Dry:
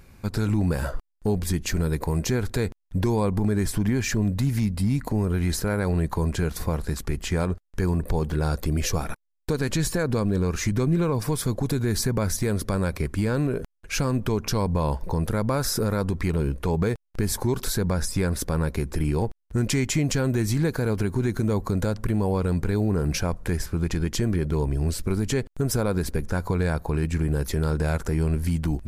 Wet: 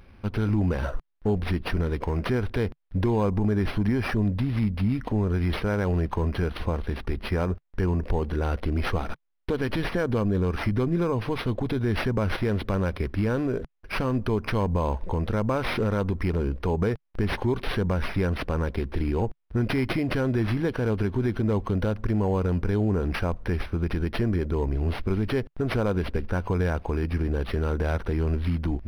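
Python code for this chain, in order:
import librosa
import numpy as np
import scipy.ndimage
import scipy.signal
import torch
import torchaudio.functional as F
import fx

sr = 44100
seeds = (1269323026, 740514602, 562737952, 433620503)

y = fx.peak_eq(x, sr, hz=150.0, db=-11.5, octaves=0.22)
y = np.interp(np.arange(len(y)), np.arange(len(y))[::6], y[::6])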